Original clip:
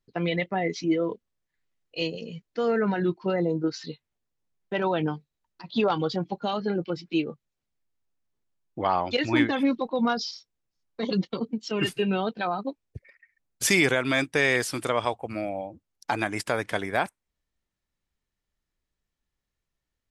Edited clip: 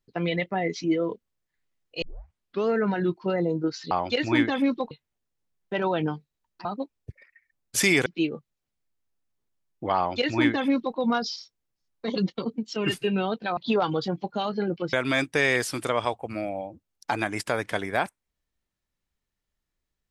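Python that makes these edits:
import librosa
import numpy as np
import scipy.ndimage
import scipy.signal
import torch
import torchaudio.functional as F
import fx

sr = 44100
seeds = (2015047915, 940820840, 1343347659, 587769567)

y = fx.edit(x, sr, fx.tape_start(start_s=2.02, length_s=0.67),
    fx.swap(start_s=5.65, length_s=1.36, other_s=12.52, other_length_s=1.41),
    fx.duplicate(start_s=8.92, length_s=1.0, to_s=3.91), tone=tone)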